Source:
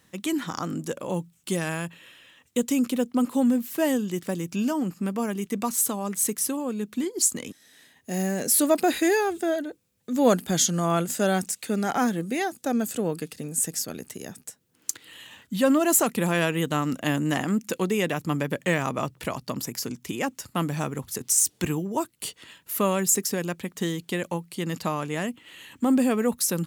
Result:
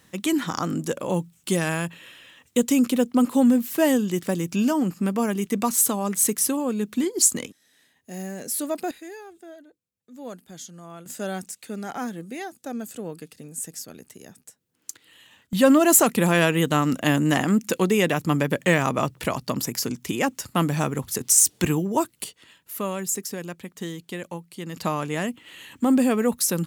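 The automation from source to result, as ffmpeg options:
-af "asetnsamples=n=441:p=0,asendcmd='7.46 volume volume -7dB;8.91 volume volume -18dB;11.06 volume volume -7dB;15.53 volume volume 4.5dB;22.24 volume volume -5dB;24.77 volume volume 2dB',volume=4dB"

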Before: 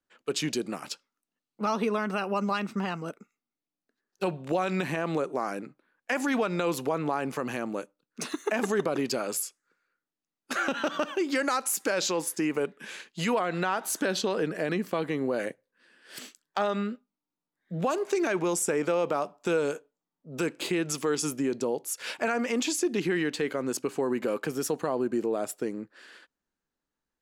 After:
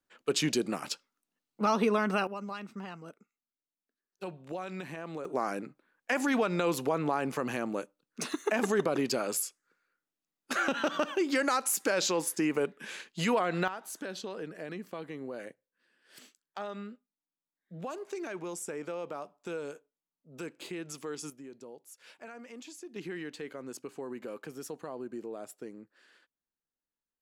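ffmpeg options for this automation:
-af "asetnsamples=n=441:p=0,asendcmd='2.27 volume volume -11dB;5.25 volume volume -1dB;13.68 volume volume -11.5dB;21.3 volume volume -19dB;22.96 volume volume -12dB',volume=1dB"

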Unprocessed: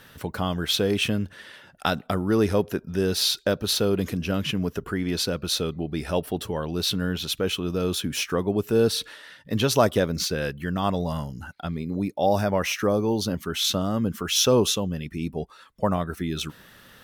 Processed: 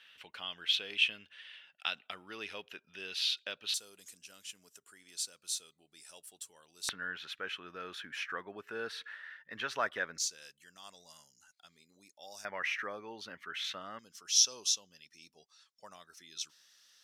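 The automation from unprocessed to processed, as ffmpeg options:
-af "asetnsamples=n=441:p=0,asendcmd='3.74 bandpass f 7900;6.89 bandpass f 1700;10.18 bandpass f 6900;12.45 bandpass f 1900;13.99 bandpass f 5600',bandpass=f=2.8k:t=q:w=3.2:csg=0"

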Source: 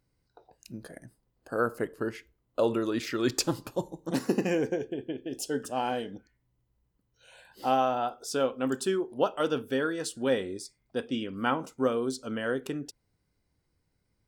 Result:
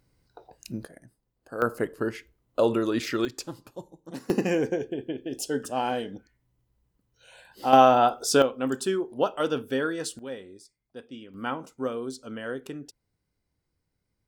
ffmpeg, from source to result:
-af "asetnsamples=n=441:p=0,asendcmd='0.85 volume volume -4dB;1.62 volume volume 3.5dB;3.25 volume volume -9dB;4.3 volume volume 2.5dB;7.73 volume volume 10dB;8.42 volume volume 1.5dB;10.19 volume volume -10.5dB;11.34 volume volume -3.5dB',volume=7dB"

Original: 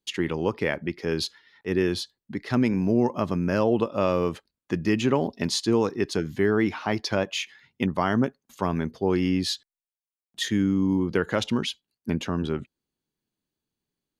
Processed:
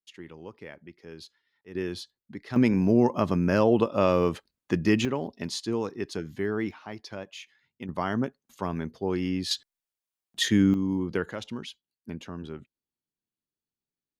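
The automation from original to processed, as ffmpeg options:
-af "asetnsamples=n=441:p=0,asendcmd='1.75 volume volume -8dB;2.56 volume volume 1dB;5.05 volume volume -7dB;6.71 volume volume -13.5dB;7.89 volume volume -5dB;9.51 volume volume 2.5dB;10.74 volume volume -4.5dB;11.31 volume volume -11dB',volume=-17.5dB"

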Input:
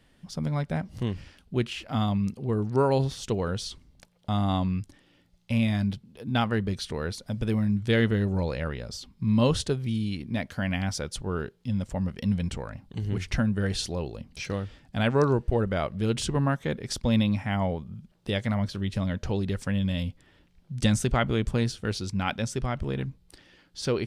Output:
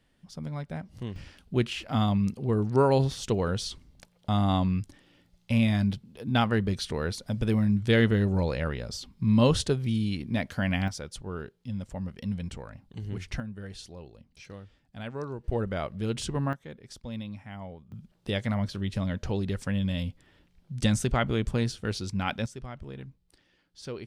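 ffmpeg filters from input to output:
-af "asetnsamples=n=441:p=0,asendcmd='1.16 volume volume 1dB;10.88 volume volume -6dB;13.4 volume volume -13.5dB;15.44 volume volume -4dB;16.53 volume volume -14dB;17.92 volume volume -1.5dB;22.46 volume volume -11dB',volume=-7dB"

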